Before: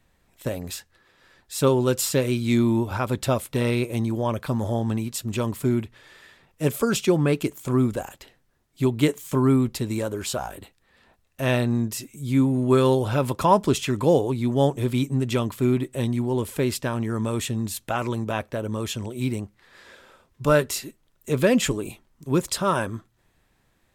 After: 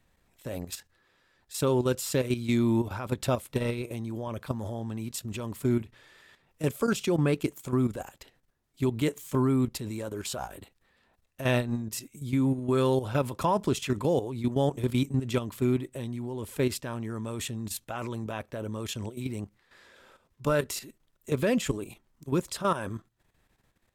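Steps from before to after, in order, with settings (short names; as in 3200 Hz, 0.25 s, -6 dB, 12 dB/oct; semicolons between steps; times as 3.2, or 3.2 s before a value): level quantiser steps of 11 dB; gain -1.5 dB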